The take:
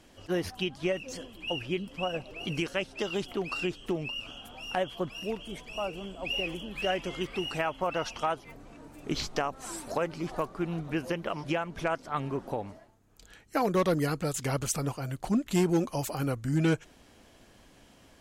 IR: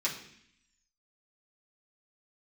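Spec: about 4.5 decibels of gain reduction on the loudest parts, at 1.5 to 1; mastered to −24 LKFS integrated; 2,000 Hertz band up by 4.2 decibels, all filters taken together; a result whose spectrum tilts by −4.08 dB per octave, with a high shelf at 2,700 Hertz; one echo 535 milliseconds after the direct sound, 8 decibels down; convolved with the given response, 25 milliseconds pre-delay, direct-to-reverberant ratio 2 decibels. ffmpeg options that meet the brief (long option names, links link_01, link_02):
-filter_complex "[0:a]equalizer=frequency=2000:width_type=o:gain=4,highshelf=frequency=2700:gain=3.5,acompressor=threshold=-34dB:ratio=1.5,aecho=1:1:535:0.398,asplit=2[link_01][link_02];[1:a]atrim=start_sample=2205,adelay=25[link_03];[link_02][link_03]afir=irnorm=-1:irlink=0,volume=-8dB[link_04];[link_01][link_04]amix=inputs=2:normalize=0,volume=7.5dB"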